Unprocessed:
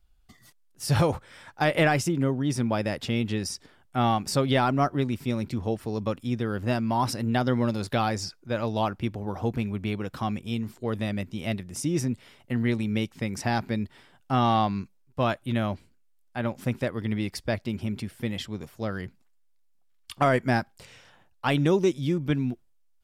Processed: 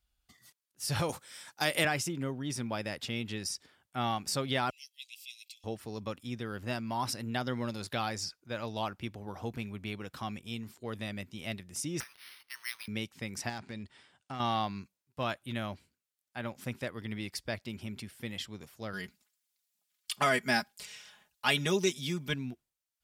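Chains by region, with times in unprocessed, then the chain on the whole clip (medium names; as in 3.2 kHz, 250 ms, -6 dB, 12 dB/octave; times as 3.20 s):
1.09–1.85 s: gate -55 dBFS, range -9 dB + high-pass 180 Hz + tone controls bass +4 dB, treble +13 dB
4.70–5.64 s: steep high-pass 2.5 kHz 72 dB/octave + comb 1.5 ms, depth 54%
12.00–12.88 s: companding laws mixed up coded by mu + steep high-pass 1 kHz 48 dB/octave + careless resampling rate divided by 6×, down none, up hold
13.49–14.40 s: brick-wall FIR low-pass 9.8 kHz + compression 16:1, threshold -26 dBFS + hard clipper -24.5 dBFS
18.93–22.34 s: treble shelf 2.1 kHz +8.5 dB + comb 4.8 ms, depth 70%
whole clip: high-pass 40 Hz; tilt shelf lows -4.5 dB, about 1.3 kHz; trim -6.5 dB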